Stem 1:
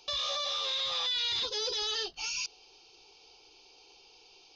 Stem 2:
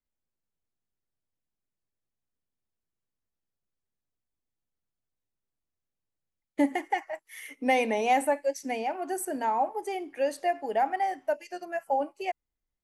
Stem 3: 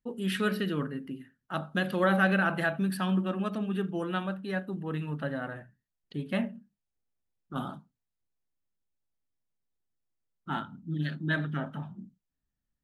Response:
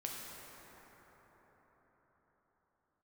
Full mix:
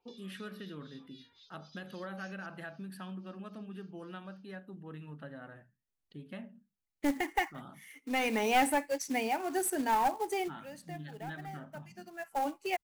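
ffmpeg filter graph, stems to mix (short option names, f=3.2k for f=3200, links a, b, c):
-filter_complex "[0:a]acompressor=threshold=-41dB:ratio=5,acrossover=split=2000[a][b];[a]aeval=exprs='val(0)*(1-1/2+1/2*cos(2*PI*3.8*n/s))':c=same[c];[b]aeval=exprs='val(0)*(1-1/2-1/2*cos(2*PI*3.8*n/s))':c=same[d];[c][d]amix=inputs=2:normalize=0,volume=-15dB[e];[1:a]equalizer=f=590:t=o:w=0.64:g=-9,acrusher=bits=4:mode=log:mix=0:aa=0.000001,aeval=exprs='clip(val(0),-1,0.0422)':c=same,adelay=450,volume=2dB[f];[2:a]acompressor=threshold=-31dB:ratio=2.5,volume=-11dB,asplit=2[g][h];[h]apad=whole_len=585823[i];[f][i]sidechaincompress=threshold=-57dB:ratio=16:attack=16:release=769[j];[e][j][g]amix=inputs=3:normalize=0"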